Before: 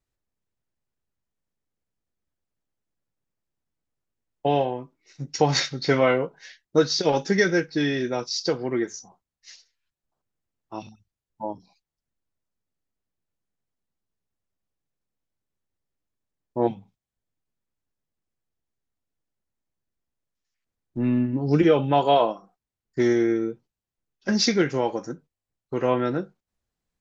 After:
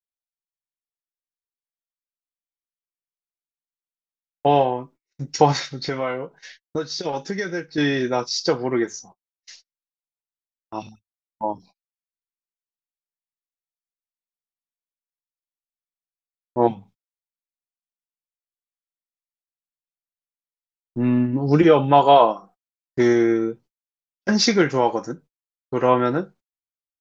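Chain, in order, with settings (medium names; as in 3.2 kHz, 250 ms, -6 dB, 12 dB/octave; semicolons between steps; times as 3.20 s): 5.52–7.78 s: compression 3:1, threshold -30 dBFS, peak gain reduction 12.5 dB; dynamic bell 1 kHz, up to +6 dB, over -38 dBFS, Q 1.3; gate -49 dBFS, range -34 dB; trim +3 dB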